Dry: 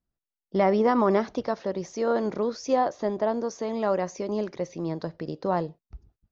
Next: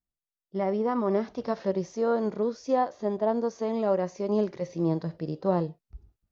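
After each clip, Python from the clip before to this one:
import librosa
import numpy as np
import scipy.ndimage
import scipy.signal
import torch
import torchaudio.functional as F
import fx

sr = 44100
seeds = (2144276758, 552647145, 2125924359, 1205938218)

y = fx.hpss(x, sr, part='percussive', gain_db=-13)
y = fx.rider(y, sr, range_db=5, speed_s=0.5)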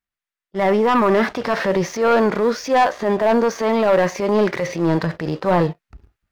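y = fx.peak_eq(x, sr, hz=1800.0, db=14.5, octaves=2.0)
y = fx.transient(y, sr, attack_db=-7, sustain_db=4)
y = fx.leveller(y, sr, passes=2)
y = F.gain(torch.from_numpy(y), 2.0).numpy()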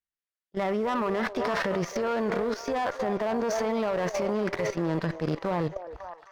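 y = fx.echo_stepped(x, sr, ms=268, hz=570.0, octaves=0.7, feedback_pct=70, wet_db=-8.0)
y = fx.level_steps(y, sr, step_db=12)
y = fx.cheby_harmonics(y, sr, harmonics=(6,), levels_db=(-24,), full_scale_db=-11.5)
y = F.gain(torch.from_numpy(y), -3.5).numpy()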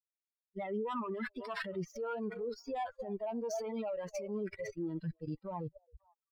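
y = fx.bin_expand(x, sr, power=3.0)
y = F.gain(torch.from_numpy(y), -4.5).numpy()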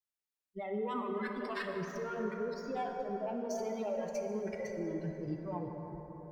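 y = fx.rev_plate(x, sr, seeds[0], rt60_s=4.9, hf_ratio=0.4, predelay_ms=0, drr_db=2.0)
y = F.gain(torch.from_numpy(y), -1.0).numpy()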